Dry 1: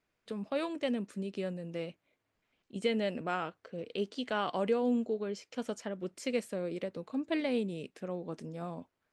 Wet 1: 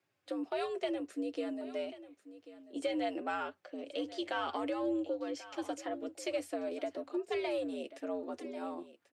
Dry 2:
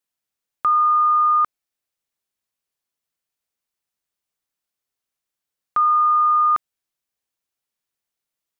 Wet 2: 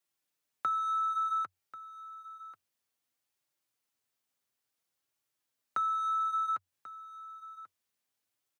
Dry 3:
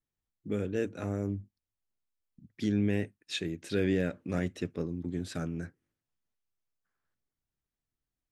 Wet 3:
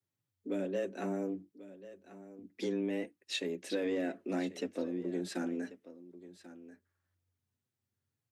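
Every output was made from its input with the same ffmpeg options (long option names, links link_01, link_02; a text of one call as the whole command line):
ffmpeg -i in.wav -filter_complex "[0:a]asplit=2[link_01][link_02];[link_02]asoftclip=type=tanh:threshold=-27dB,volume=-6dB[link_03];[link_01][link_03]amix=inputs=2:normalize=0,alimiter=limit=-17dB:level=0:latency=1,flanger=delay=3.8:depth=3.1:regen=-30:speed=0.58:shape=sinusoidal,acompressor=threshold=-30dB:ratio=6,afreqshift=90,asplit=2[link_04][link_05];[link_05]aecho=0:1:1089:0.158[link_06];[link_04][link_06]amix=inputs=2:normalize=0" out.wav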